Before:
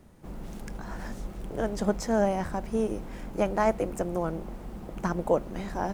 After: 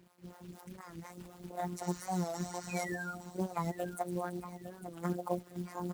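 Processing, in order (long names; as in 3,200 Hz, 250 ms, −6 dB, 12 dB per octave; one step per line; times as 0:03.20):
two-band tremolo in antiphase 4.1 Hz, depth 100%, crossover 400 Hz
healed spectral selection 0:01.85–0:02.81, 890–7,300 Hz before
delay with a high-pass on its return 110 ms, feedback 68%, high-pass 3,100 Hz, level −6.5 dB
reverb reduction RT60 0.82 s
formants moved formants +3 semitones
sound drawn into the spectrogram fall, 0:02.69–0:03.15, 1,300–2,600 Hz −36 dBFS
phases set to zero 177 Hz
parametric band 2,500 Hz −6.5 dB 1.3 octaves
on a send: repeating echo 858 ms, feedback 28%, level −12 dB
on the sum: log-companded quantiser 6 bits
high-pass filter 75 Hz 12 dB per octave
wow of a warped record 45 rpm, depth 100 cents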